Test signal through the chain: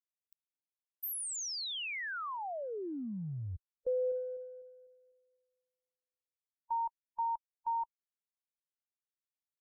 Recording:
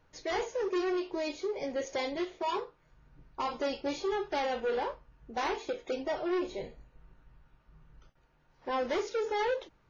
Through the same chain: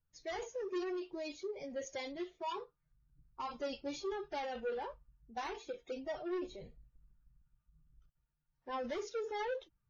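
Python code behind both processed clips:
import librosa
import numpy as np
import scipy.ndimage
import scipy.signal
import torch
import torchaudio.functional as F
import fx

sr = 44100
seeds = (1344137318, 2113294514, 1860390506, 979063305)

y = fx.bin_expand(x, sr, power=1.5)
y = fx.transient(y, sr, attack_db=2, sustain_db=6)
y = y * librosa.db_to_amplitude(-6.5)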